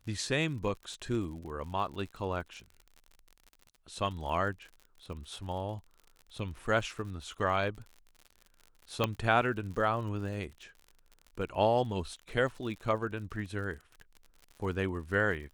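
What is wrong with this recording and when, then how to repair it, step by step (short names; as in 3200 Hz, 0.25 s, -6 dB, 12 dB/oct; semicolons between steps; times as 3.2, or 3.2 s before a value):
crackle 58/s -42 dBFS
9.04 pop -14 dBFS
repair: de-click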